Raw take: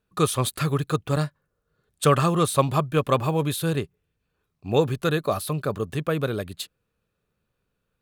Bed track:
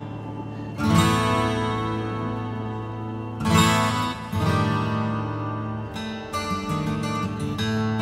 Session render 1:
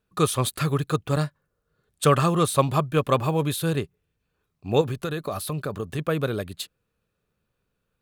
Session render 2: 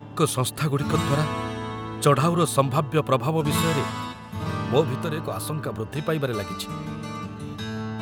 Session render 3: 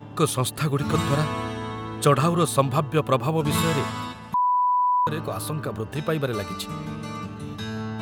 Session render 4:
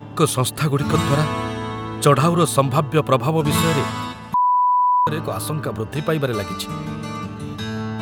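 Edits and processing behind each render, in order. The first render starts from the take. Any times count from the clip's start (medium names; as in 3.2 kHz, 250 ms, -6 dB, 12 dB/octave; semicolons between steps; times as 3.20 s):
4.81–5.99 s: compression, threshold -24 dBFS
add bed track -7 dB
4.34–5.07 s: bleep 992 Hz -17.5 dBFS
trim +4.5 dB; peak limiter -2 dBFS, peak gain reduction 2 dB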